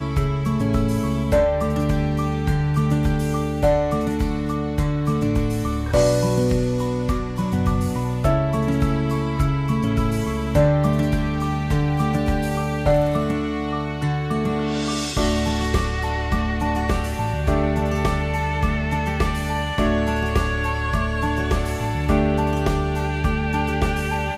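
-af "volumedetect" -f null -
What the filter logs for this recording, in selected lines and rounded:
mean_volume: -20.6 dB
max_volume: -6.5 dB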